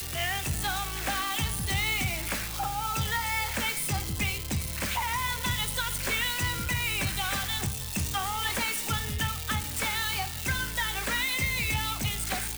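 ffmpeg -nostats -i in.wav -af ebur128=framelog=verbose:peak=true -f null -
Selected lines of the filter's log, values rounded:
Integrated loudness:
  I:         -28.7 LUFS
  Threshold: -38.7 LUFS
Loudness range:
  LRA:         0.8 LU
  Threshold: -48.7 LUFS
  LRA low:   -29.1 LUFS
  LRA high:  -28.3 LUFS
True peak:
  Peak:      -19.6 dBFS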